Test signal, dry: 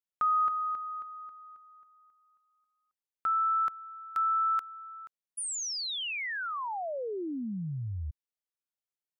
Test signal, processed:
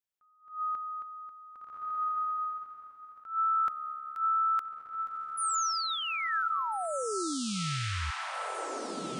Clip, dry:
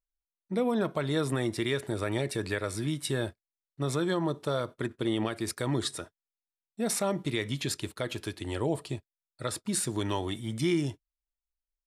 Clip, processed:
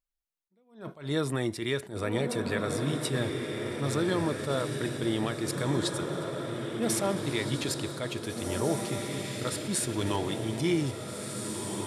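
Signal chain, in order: diffused feedback echo 1.824 s, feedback 44%, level -3.5 dB; attack slew limiter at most 150 dB/s

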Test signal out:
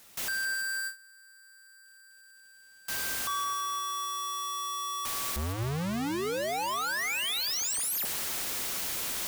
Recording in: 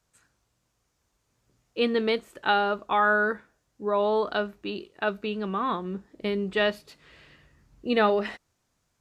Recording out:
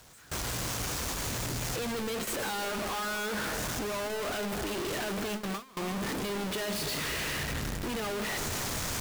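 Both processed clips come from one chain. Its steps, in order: infinite clipping; notches 50/100 Hz; split-band echo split 2200 Hz, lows 0.258 s, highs 0.166 s, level -11 dB; gate with hold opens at -23 dBFS; gain -5 dB

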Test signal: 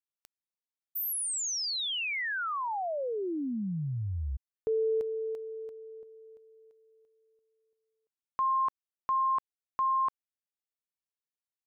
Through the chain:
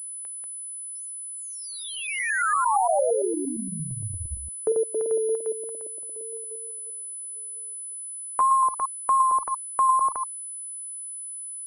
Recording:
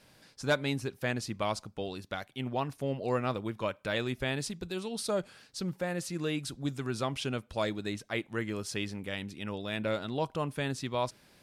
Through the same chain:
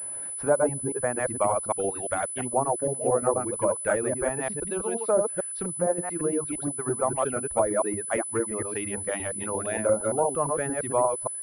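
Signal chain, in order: reverse delay 0.115 s, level -1 dB; reverb removal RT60 0.97 s; tilt -2.5 dB/oct; treble ducked by the level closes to 860 Hz, closed at -23 dBFS; vibrato 3.2 Hz 20 cents; in parallel at -1 dB: compressor, threshold -39 dBFS; on the sum: three-band isolator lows -18 dB, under 420 Hz, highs -17 dB, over 2100 Hz; pulse-width modulation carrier 10000 Hz; gain +7.5 dB

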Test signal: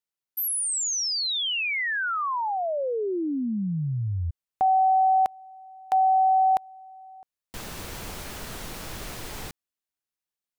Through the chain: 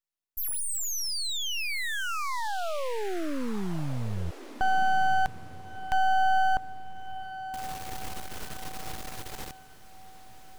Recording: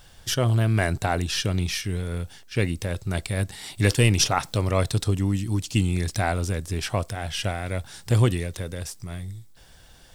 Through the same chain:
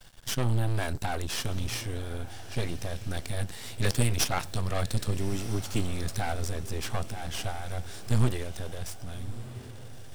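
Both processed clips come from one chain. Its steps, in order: half-wave rectifier; diffused feedback echo 1.284 s, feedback 41%, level -14 dB

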